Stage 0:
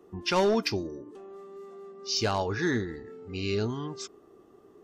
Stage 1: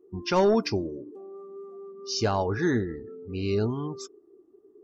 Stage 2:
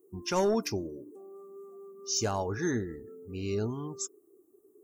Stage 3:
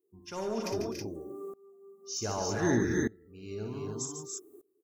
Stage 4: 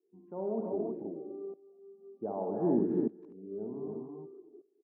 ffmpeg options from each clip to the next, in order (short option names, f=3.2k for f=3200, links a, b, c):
-af "afftdn=nr=19:nf=-44,equalizer=f=3.1k:w=0.62:g=-7.5,volume=3.5dB"
-af "aexciter=amount=13.8:drive=4.6:freq=6.8k,volume=-5.5dB"
-filter_complex "[0:a]asplit=2[a][b];[b]aecho=0:1:58|144|168|254|284|322:0.447|0.316|0.141|0.106|0.299|0.376[c];[a][c]amix=inputs=2:normalize=0,aeval=exprs='val(0)*pow(10,-24*if(lt(mod(-0.65*n/s,1),2*abs(-0.65)/1000),1-mod(-0.65*n/s,1)/(2*abs(-0.65)/1000),(mod(-0.65*n/s,1)-2*abs(-0.65)/1000)/(1-2*abs(-0.65)/1000))/20)':c=same,volume=7.5dB"
-filter_complex "[0:a]asuperpass=centerf=370:order=8:qfactor=0.56,asplit=2[a][b];[b]adelay=250,highpass=300,lowpass=3.4k,asoftclip=type=hard:threshold=-26dB,volume=-21dB[c];[a][c]amix=inputs=2:normalize=0"